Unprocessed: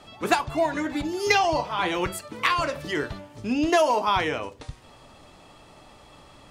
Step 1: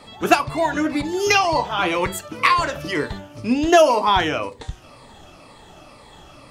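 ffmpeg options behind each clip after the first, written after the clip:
-af "afftfilt=real='re*pow(10,8/40*sin(2*PI*(0.96*log(max(b,1)*sr/1024/100)/log(2)-(-2)*(pts-256)/sr)))':imag='im*pow(10,8/40*sin(2*PI*(0.96*log(max(b,1)*sr/1024/100)/log(2)-(-2)*(pts-256)/sr)))':win_size=1024:overlap=0.75,volume=1.68"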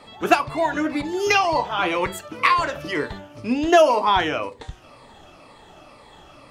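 -af "bass=f=250:g=-4,treble=f=4000:g=-5,volume=0.891"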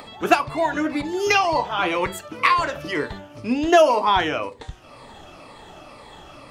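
-af "acompressor=mode=upward:threshold=0.0158:ratio=2.5"

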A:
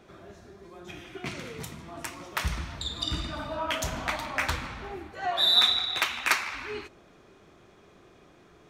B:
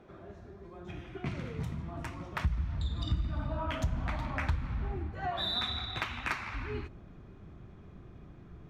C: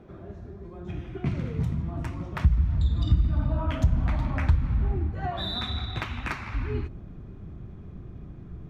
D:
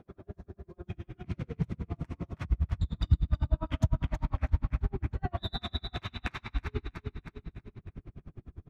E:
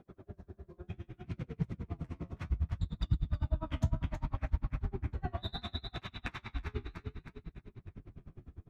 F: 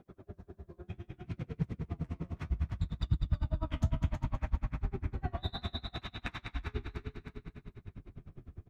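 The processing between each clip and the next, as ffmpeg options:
-af "lowpass=f=1200:p=1,asubboost=boost=6:cutoff=180,acompressor=threshold=0.0316:ratio=3"
-af "lowshelf=f=400:g=10.5"
-af "aecho=1:1:322|644|966|1288|1610|1932:0.447|0.237|0.125|0.0665|0.0352|0.0187,aeval=exprs='val(0)*pow(10,-38*(0.5-0.5*cos(2*PI*9.9*n/s))/20)':c=same"
-af "flanger=delay=5.1:depth=9:regen=-49:speed=0.66:shape=triangular"
-af "aecho=1:1:201|402|603|804|1005|1206:0.398|0.215|0.116|0.0627|0.0339|0.0183"

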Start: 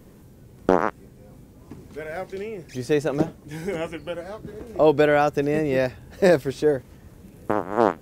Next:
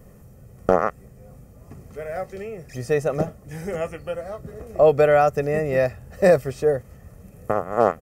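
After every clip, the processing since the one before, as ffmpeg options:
-af "equalizer=f=3700:w=2:g=-11,aecho=1:1:1.6:0.61"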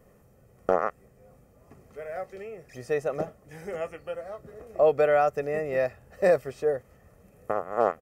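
-af "bass=f=250:g=-9,treble=f=4000:g=-5,volume=0.562"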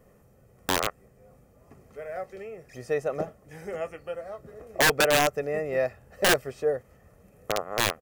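-af "aeval=exprs='(mod(5.62*val(0)+1,2)-1)/5.62':c=same"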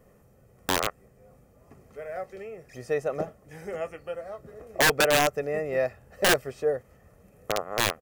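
-af anull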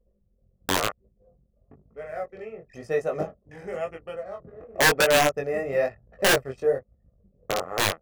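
-af "anlmdn=0.0158,flanger=delay=18:depth=5:speed=0.99,volume=1.68"

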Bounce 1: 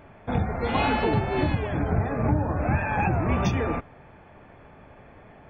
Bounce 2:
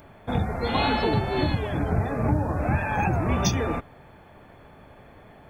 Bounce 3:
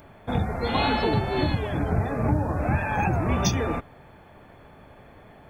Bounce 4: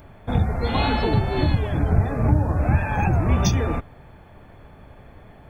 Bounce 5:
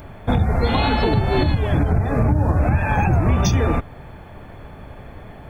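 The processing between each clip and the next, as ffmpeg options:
-af "aexciter=amount=5.9:drive=2.7:freq=3800"
-af anull
-af "lowshelf=f=110:g=11"
-af "alimiter=limit=0.158:level=0:latency=1:release=207,volume=2.37"

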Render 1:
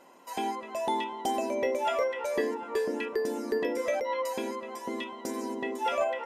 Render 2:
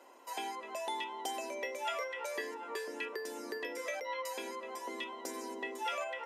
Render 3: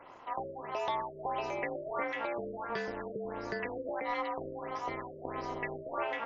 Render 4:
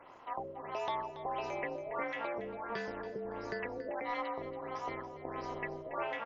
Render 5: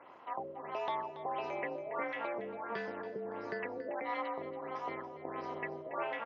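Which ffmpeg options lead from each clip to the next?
-filter_complex "[0:a]highpass=f=290:w=0.5412,highpass=f=290:w=1.3066,acrossover=split=1200[s0][s1];[s0]acompressor=threshold=0.0112:ratio=6[s2];[s2][s1]amix=inputs=2:normalize=0,volume=0.794"
-filter_complex "[0:a]asplit=2[s0][s1];[s1]highpass=f=720:p=1,volume=3.98,asoftclip=type=tanh:threshold=0.0708[s2];[s0][s2]amix=inputs=2:normalize=0,lowpass=f=1600:p=1,volume=0.501,tremolo=f=240:d=0.947,afftfilt=real='re*lt(b*sr/1024,610*pow(7400/610,0.5+0.5*sin(2*PI*1.5*pts/sr)))':imag='im*lt(b*sr/1024,610*pow(7400/610,0.5+0.5*sin(2*PI*1.5*pts/sr)))':win_size=1024:overlap=0.75,volume=2"
-af "aecho=1:1:281|562:0.224|0.0381,volume=0.75"
-af "highpass=150,lowpass=3700"

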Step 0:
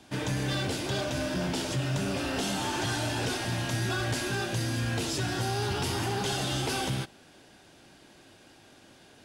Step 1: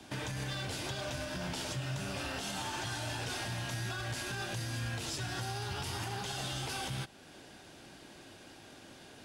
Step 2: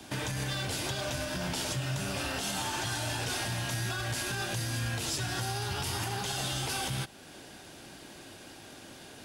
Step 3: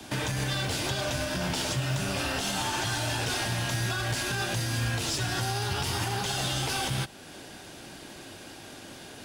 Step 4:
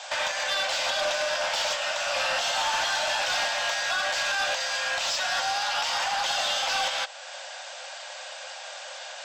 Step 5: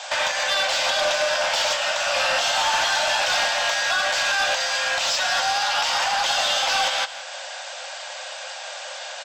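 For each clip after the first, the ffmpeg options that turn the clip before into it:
-filter_complex "[0:a]acrossover=split=170|550|4600[s0][s1][s2][s3];[s1]acompressor=threshold=0.00631:ratio=6[s4];[s0][s4][s2][s3]amix=inputs=4:normalize=0,alimiter=level_in=2.11:limit=0.0631:level=0:latency=1:release=336,volume=0.473,volume=1.26"
-af "highshelf=f=10000:g=9,volume=1.58"
-filter_complex "[0:a]acrossover=split=130|7200[s0][s1][s2];[s0]acrusher=bits=2:mode=log:mix=0:aa=0.000001[s3];[s2]aeval=exprs='(tanh(141*val(0)+0.3)-tanh(0.3))/141':c=same[s4];[s3][s1][s4]amix=inputs=3:normalize=0,volume=1.58"
-filter_complex "[0:a]afftfilt=real='re*between(b*sr/4096,500,8200)':imag='im*between(b*sr/4096,500,8200)':win_size=4096:overlap=0.75,asoftclip=type=tanh:threshold=0.0398,acrossover=split=6200[s0][s1];[s1]acompressor=threshold=0.00316:ratio=4:attack=1:release=60[s2];[s0][s2]amix=inputs=2:normalize=0,volume=2.51"
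-af "aecho=1:1:168:0.188,volume=1.78"

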